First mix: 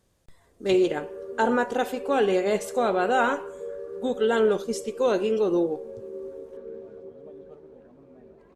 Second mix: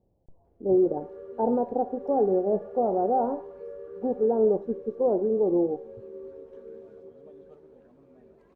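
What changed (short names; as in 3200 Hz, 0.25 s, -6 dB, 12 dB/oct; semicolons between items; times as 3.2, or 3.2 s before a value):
speech: add elliptic low-pass 810 Hz, stop band 80 dB; background -4.5 dB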